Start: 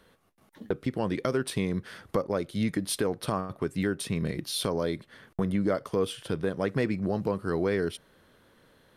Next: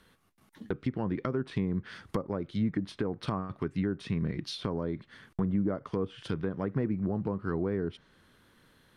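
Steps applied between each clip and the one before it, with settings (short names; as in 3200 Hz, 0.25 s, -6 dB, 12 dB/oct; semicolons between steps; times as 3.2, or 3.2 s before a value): dynamic EQ 6500 Hz, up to +4 dB, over -51 dBFS, Q 1; treble ducked by the level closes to 910 Hz, closed at -23.5 dBFS; bell 560 Hz -8 dB 1.1 oct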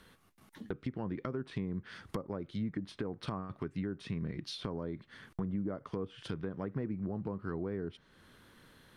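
compressor 1.5:1, threshold -52 dBFS, peak gain reduction 10 dB; gain +2.5 dB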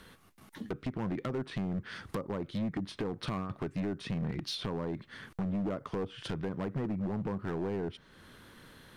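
overloaded stage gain 35 dB; gain +5.5 dB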